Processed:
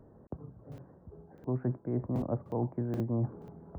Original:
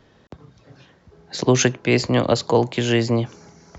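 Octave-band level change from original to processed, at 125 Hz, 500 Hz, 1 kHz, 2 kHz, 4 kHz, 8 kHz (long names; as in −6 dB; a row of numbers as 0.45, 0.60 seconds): −10.0 dB, −17.5 dB, −18.0 dB, below −30 dB, below −40 dB, can't be measured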